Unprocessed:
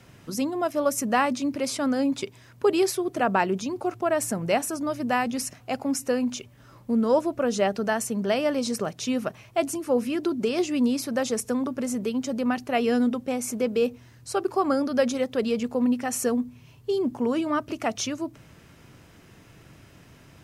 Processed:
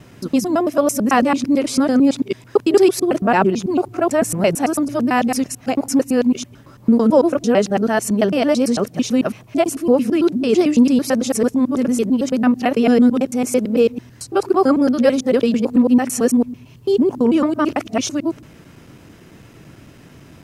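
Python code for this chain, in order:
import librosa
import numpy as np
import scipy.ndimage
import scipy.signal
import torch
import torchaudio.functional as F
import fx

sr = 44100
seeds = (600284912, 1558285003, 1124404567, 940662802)

y = fx.local_reverse(x, sr, ms=111.0)
y = fx.peak_eq(y, sr, hz=270.0, db=5.5, octaves=1.8)
y = y * librosa.db_to_amplitude(5.5)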